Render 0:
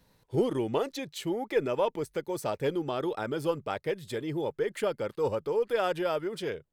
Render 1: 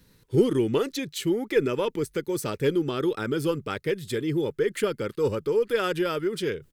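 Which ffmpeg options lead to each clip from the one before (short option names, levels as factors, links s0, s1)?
-af "firequalizer=gain_entry='entry(410,0);entry(680,-15);entry(1300,-2);entry(9300,1)':delay=0.05:min_phase=1,areverse,acompressor=mode=upward:threshold=0.00251:ratio=2.5,areverse,volume=2.24"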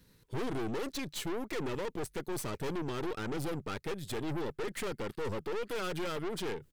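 -af "aeval=exprs='(tanh(50.1*val(0)+0.75)-tanh(0.75))/50.1':c=same"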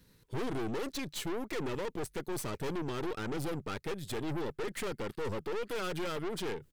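-af anull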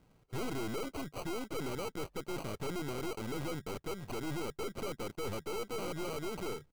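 -af "acrusher=samples=25:mix=1:aa=0.000001,volume=0.75"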